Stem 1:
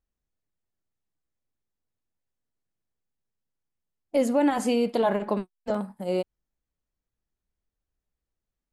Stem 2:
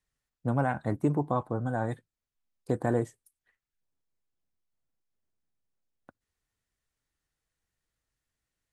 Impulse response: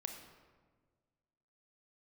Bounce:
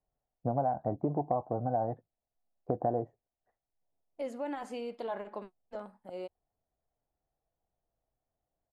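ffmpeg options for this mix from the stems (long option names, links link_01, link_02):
-filter_complex "[0:a]lowpass=frequency=2600:poles=1,equalizer=frequency=150:width_type=o:width=2:gain=-11,adelay=50,volume=-11dB[link_01];[1:a]lowpass=frequency=710:width_type=q:width=4.9,volume=-1dB[link_02];[link_01][link_02]amix=inputs=2:normalize=0,acompressor=threshold=-29dB:ratio=3"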